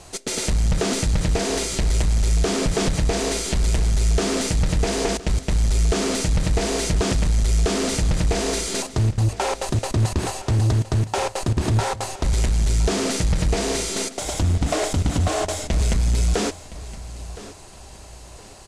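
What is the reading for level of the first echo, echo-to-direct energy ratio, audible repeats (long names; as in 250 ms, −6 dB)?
−16.5 dB, −16.0 dB, 2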